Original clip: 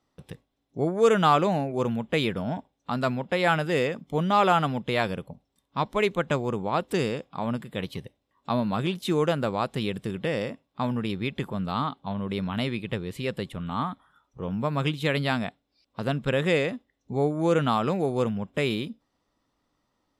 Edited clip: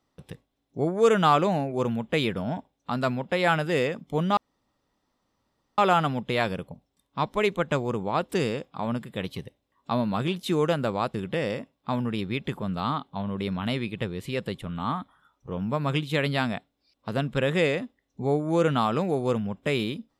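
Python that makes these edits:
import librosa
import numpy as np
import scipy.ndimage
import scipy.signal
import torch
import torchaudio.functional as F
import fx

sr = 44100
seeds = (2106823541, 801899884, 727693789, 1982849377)

y = fx.edit(x, sr, fx.insert_room_tone(at_s=4.37, length_s=1.41),
    fx.cut(start_s=9.73, length_s=0.32), tone=tone)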